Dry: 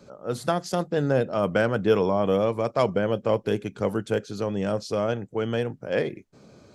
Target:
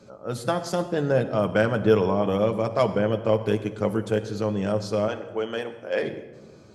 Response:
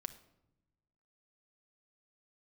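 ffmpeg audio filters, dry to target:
-filter_complex "[0:a]asettb=1/sr,asplit=3[a][b][c];[a]atrim=end=5.084[d];[b]atrim=start=5.08:end=6.03,asetpts=PTS-STARTPTS,afade=t=in:d=0.004:c=qsin,afade=t=out:st=0.946:d=0.004:c=qsin,highpass=370[e];[c]atrim=start=6.026[f];[d][e]acrossfade=d=0.004:c1=hsin:c2=qsin[g];[g][f]acrossfade=d=0.004:c1=qsin:c2=hsin[h];[1:a]atrim=start_sample=2205,asetrate=24696,aresample=44100[i];[h][i]afir=irnorm=-1:irlink=0"

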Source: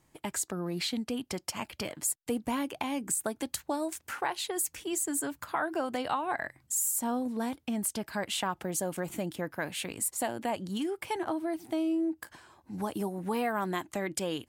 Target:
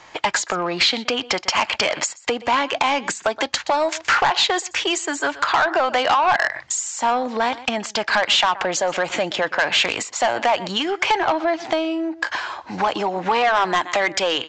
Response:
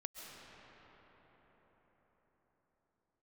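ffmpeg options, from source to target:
-filter_complex "[0:a]aecho=1:1:123:0.075,acompressor=threshold=-37dB:ratio=6,acrossover=split=560 5200:gain=0.0891 1 0.178[a][b][c];[a][b][c]amix=inputs=3:normalize=0,apsyclip=29dB,aresample=16000,asoftclip=type=tanh:threshold=-11.5dB,aresample=44100"

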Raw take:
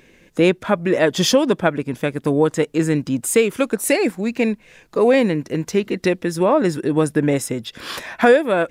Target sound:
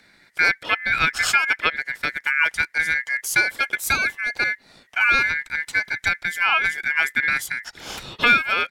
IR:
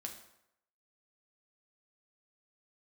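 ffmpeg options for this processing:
-af "aresample=32000,aresample=44100,afreqshift=-23,aeval=exprs='val(0)*sin(2*PI*1900*n/s)':c=same,volume=-1dB"

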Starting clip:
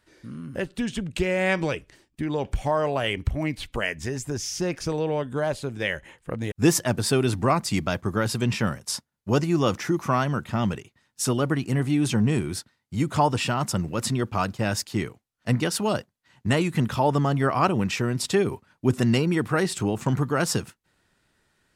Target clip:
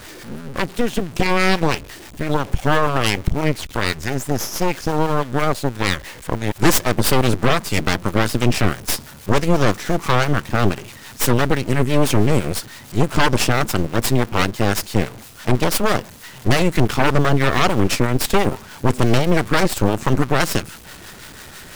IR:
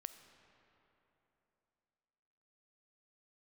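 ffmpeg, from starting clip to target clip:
-filter_complex "[0:a]aeval=exprs='val(0)+0.5*0.0224*sgn(val(0))':c=same,acrossover=split=630[a][b];[a]aeval=exprs='val(0)*(1-0.5/2+0.5/2*cos(2*PI*6*n/s))':c=same[c];[b]aeval=exprs='val(0)*(1-0.5/2-0.5/2*cos(2*PI*6*n/s))':c=same[d];[c][d]amix=inputs=2:normalize=0,aeval=exprs='0.398*(cos(1*acos(clip(val(0)/0.398,-1,1)))-cos(1*PI/2))+0.158*(cos(8*acos(clip(val(0)/0.398,-1,1)))-cos(8*PI/2))':c=same,volume=2dB"

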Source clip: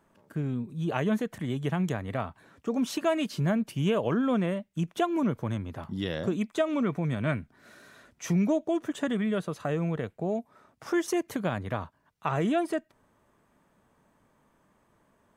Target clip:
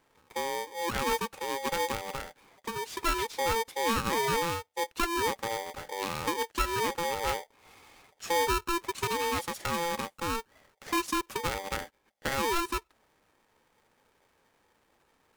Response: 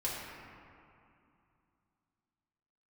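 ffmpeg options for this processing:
-filter_complex "[0:a]asettb=1/sr,asplit=3[a][b][c];[a]atrim=end=2.094[d];[b]atrim=start=2.09:end=3.03,asetpts=PTS-STARTPTS,afade=t=in:d=0.004:c=qsin,afade=t=out:st=0.936:d=0.004:c=qsin,acompressor=threshold=-30dB:ratio=6[e];[c]atrim=start=3.026[f];[d][e]acrossfade=d=0.004:c1=hsin:c2=qsin[g];[g][f]acrossfade=d=0.004:c1=qsin:c2=hsin,asettb=1/sr,asplit=3[h][i][j];[h]atrim=end=8.984[k];[i]atrim=start=8.98:end=10.35,asetpts=PTS-STARTPTS,afade=t=in:d=0.004:c=qsin,afade=t=out:st=1.366:d=0.004:c=qsin,equalizer=f=9.8k:w=0.41:g=13[l];[j]atrim=start=10.346[m];[k][l]acrossfade=d=0.004:c1=hsin:c2=qsin[n];[n][m]acrossfade=d=0.004:c1=qsin:c2=hsin,aeval=exprs='val(0)*sgn(sin(2*PI*680*n/s))':c=same,volume=-2.5dB"

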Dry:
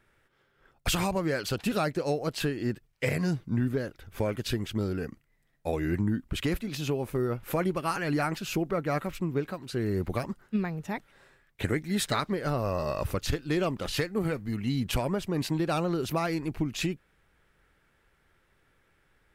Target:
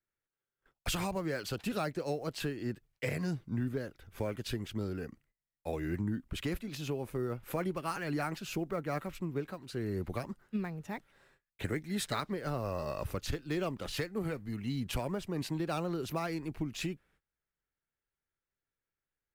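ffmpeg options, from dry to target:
-filter_complex "[0:a]agate=range=-21dB:threshold=-60dB:ratio=16:detection=peak,acrossover=split=300|680|6400[a][b][c][d];[c]acrusher=bits=5:mode=log:mix=0:aa=0.000001[e];[a][b][e][d]amix=inputs=4:normalize=0,volume=-6.5dB"

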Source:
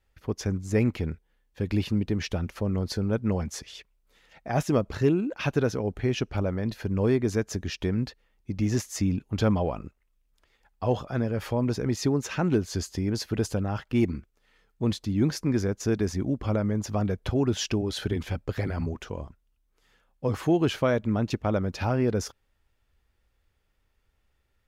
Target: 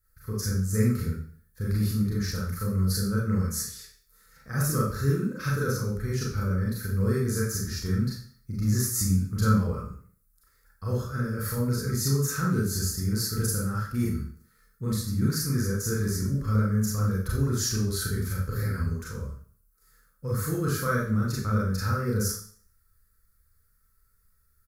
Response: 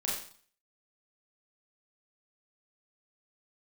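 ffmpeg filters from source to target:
-filter_complex "[0:a]firequalizer=gain_entry='entry(140,0);entry(300,-15);entry(480,-7);entry(690,-28);entry(1300,3);entry(2900,-24);entry(4300,-2);entry(6200,0);entry(11000,14)':delay=0.05:min_phase=1[a];[1:a]atrim=start_sample=2205[b];[a][b]afir=irnorm=-1:irlink=0"

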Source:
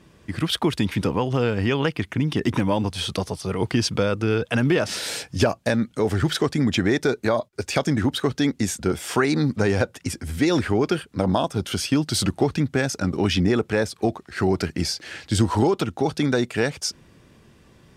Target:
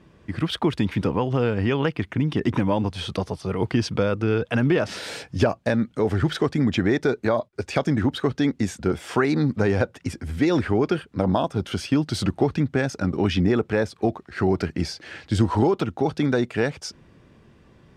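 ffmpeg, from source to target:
-af "lowpass=f=2.4k:p=1"

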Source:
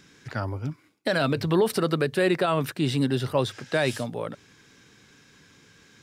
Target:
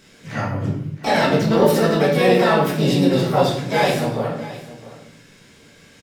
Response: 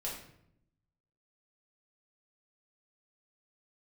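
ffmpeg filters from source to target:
-filter_complex "[0:a]asplit=3[a][b][c];[b]asetrate=58866,aresample=44100,atempo=0.749154,volume=-2dB[d];[c]asetrate=88200,aresample=44100,atempo=0.5,volume=-14dB[e];[a][d][e]amix=inputs=3:normalize=0,aecho=1:1:666:0.141[f];[1:a]atrim=start_sample=2205[g];[f][g]afir=irnorm=-1:irlink=0,volume=3dB"

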